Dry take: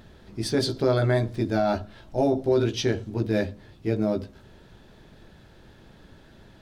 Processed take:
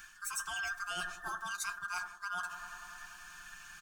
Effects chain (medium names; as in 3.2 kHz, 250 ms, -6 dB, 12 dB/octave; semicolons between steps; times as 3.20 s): every band turned upside down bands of 1 kHz; amplifier tone stack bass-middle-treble 10-0-10; on a send: bucket-brigade echo 169 ms, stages 1024, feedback 84%, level -18.5 dB; on the sum: speed mistake 45 rpm record played at 78 rpm; comb 5.7 ms, depth 55%; reverse; compression 6:1, threshold -43 dBFS, peak gain reduction 15.5 dB; reverse; trim +6.5 dB